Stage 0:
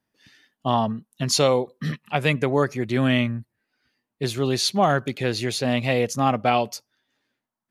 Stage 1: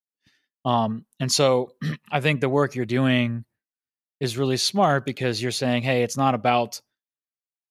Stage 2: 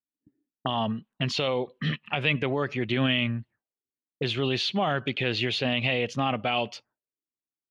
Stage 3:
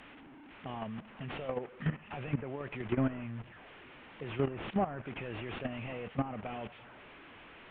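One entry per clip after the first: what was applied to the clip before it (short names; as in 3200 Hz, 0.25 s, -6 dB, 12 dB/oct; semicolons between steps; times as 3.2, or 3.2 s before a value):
expander -46 dBFS
limiter -16 dBFS, peak gain reduction 10 dB; envelope low-pass 290–3000 Hz up, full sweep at -30 dBFS; gain -1.5 dB
delta modulation 16 kbps, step -34 dBFS; level quantiser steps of 13 dB; treble ducked by the level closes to 1700 Hz, closed at -29 dBFS; gain -1.5 dB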